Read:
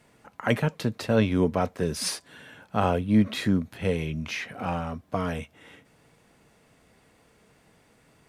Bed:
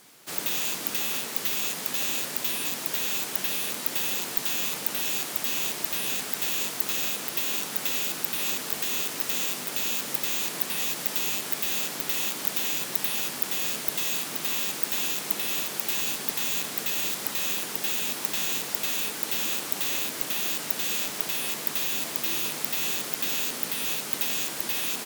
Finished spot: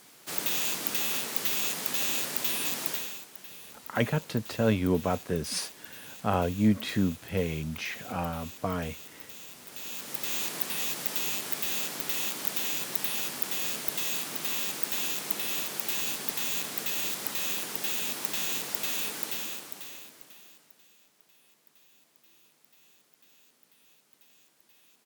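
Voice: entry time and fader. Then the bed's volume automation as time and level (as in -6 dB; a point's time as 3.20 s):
3.50 s, -3.0 dB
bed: 2.88 s -1 dB
3.28 s -17.5 dB
9.48 s -17.5 dB
10.35 s -3 dB
19.19 s -3 dB
20.95 s -33 dB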